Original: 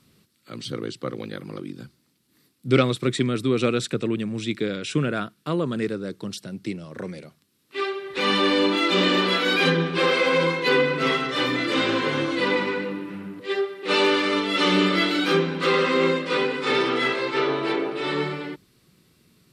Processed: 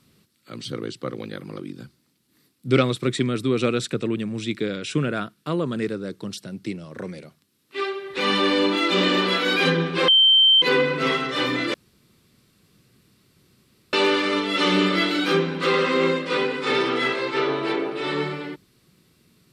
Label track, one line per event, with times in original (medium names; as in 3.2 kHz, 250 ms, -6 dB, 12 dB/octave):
10.080000	10.620000	bleep 3.12 kHz -11.5 dBFS
11.740000	13.930000	room tone